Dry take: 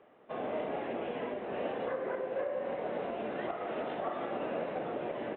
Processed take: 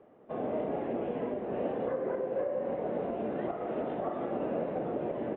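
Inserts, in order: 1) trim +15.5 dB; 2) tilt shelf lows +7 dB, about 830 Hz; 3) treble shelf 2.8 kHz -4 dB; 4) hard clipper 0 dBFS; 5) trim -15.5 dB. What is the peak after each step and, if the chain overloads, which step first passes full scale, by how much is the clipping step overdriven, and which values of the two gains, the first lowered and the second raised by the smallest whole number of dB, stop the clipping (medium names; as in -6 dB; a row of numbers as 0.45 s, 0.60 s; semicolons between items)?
-9.0 dBFS, -5.5 dBFS, -5.5 dBFS, -5.5 dBFS, -21.0 dBFS; nothing clips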